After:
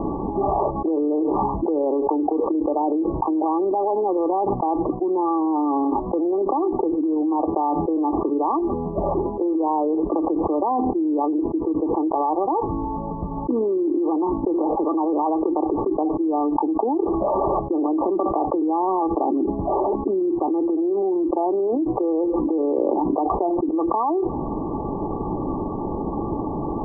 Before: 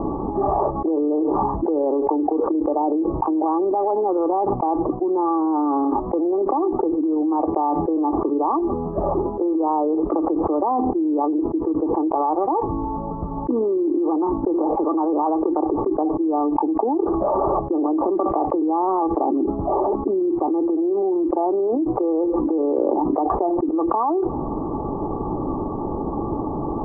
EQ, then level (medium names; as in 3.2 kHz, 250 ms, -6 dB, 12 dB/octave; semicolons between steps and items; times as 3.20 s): brick-wall FIR low-pass 1.2 kHz; peaking EQ 190 Hz +3 dB 0.31 oct; -1.0 dB